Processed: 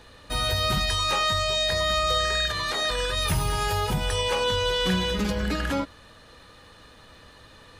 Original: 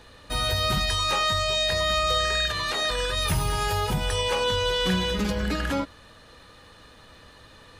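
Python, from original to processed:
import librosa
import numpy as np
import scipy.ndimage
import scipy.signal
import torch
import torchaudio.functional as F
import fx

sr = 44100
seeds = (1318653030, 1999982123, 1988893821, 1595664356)

y = fx.notch(x, sr, hz=2700.0, q=7.5, at=(1.48, 2.87))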